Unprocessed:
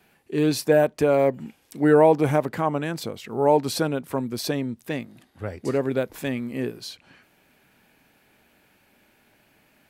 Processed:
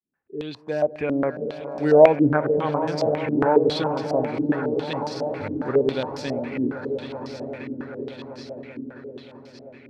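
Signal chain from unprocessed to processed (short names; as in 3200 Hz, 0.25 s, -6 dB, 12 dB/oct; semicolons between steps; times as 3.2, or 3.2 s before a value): opening faded in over 1.41 s; swelling echo 0.194 s, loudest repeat 5, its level -13 dB; stepped low-pass 7.3 Hz 290–5200 Hz; gain -4 dB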